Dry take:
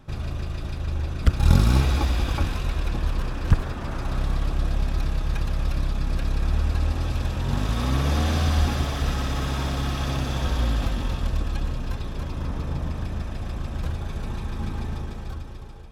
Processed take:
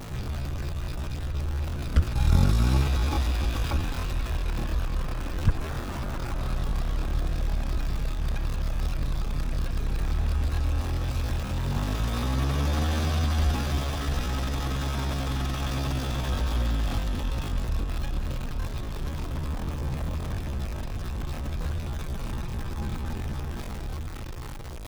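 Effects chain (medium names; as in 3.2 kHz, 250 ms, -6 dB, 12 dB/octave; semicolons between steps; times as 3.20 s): jump at every zero crossing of -28.5 dBFS; tempo 0.64×; trim -4.5 dB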